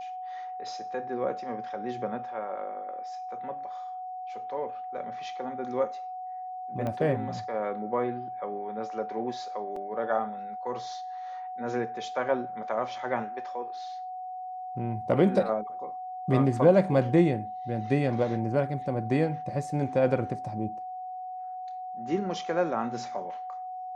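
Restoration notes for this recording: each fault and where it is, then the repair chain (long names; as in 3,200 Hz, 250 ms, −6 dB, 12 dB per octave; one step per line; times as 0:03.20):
whistle 740 Hz −35 dBFS
0:06.87: click −21 dBFS
0:09.76: drop-out 3.7 ms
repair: click removal
notch filter 740 Hz, Q 30
repair the gap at 0:09.76, 3.7 ms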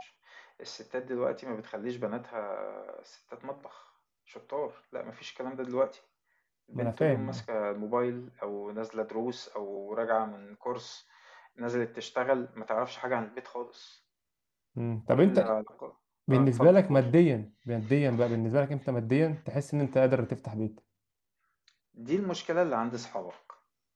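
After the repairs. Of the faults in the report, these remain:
0:06.87: click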